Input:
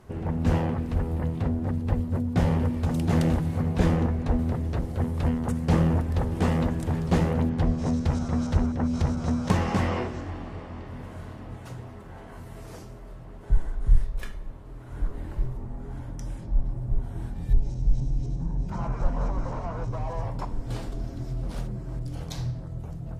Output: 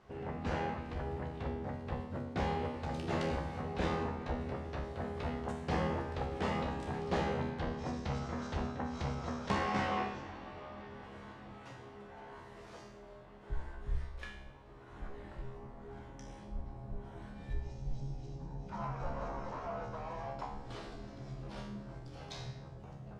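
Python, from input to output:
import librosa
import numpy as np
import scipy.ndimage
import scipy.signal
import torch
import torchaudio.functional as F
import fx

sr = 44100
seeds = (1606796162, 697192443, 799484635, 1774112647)

y = scipy.signal.sosfilt(scipy.signal.butter(2, 4700.0, 'lowpass', fs=sr, output='sos'), x)
y = fx.low_shelf(y, sr, hz=320.0, db=-11.0)
y = fx.comb_fb(y, sr, f0_hz=68.0, decay_s=0.71, harmonics='all', damping=0.0, mix_pct=90)
y = y * librosa.db_to_amplitude(7.5)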